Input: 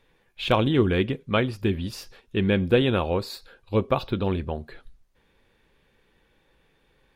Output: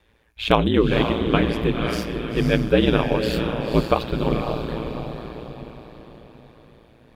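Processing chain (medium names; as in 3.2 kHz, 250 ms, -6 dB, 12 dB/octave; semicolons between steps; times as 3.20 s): echo that smears into a reverb 516 ms, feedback 47%, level -5 dB; ring modulator 57 Hz; trim +5.5 dB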